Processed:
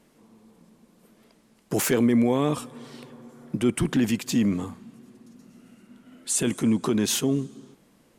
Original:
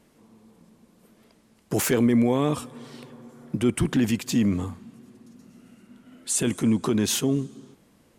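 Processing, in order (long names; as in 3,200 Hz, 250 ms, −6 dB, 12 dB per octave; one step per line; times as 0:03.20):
parametric band 82 Hz −13 dB 0.47 octaves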